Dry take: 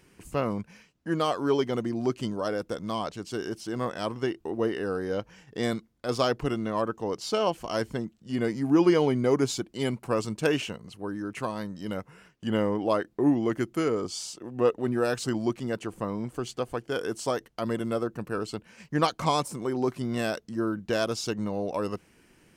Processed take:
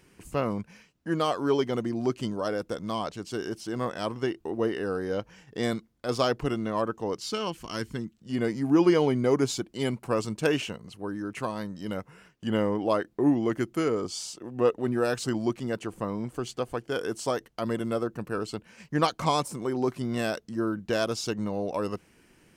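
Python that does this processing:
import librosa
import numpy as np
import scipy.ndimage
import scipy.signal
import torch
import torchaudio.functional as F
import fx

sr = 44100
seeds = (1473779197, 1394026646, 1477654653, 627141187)

y = fx.peak_eq(x, sr, hz=650.0, db=-12.5, octaves=0.94, at=(7.17, 8.17))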